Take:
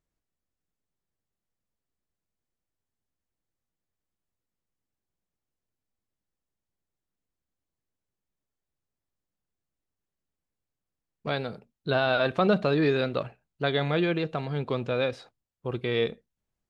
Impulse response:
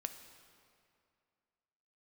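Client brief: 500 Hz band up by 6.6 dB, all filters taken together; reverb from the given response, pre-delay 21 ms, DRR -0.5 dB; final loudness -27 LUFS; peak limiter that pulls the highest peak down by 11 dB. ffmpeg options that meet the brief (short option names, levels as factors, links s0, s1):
-filter_complex "[0:a]equalizer=f=500:t=o:g=8,alimiter=limit=0.133:level=0:latency=1,asplit=2[s0][s1];[1:a]atrim=start_sample=2205,adelay=21[s2];[s1][s2]afir=irnorm=-1:irlink=0,volume=1.33[s3];[s0][s3]amix=inputs=2:normalize=0,volume=0.75"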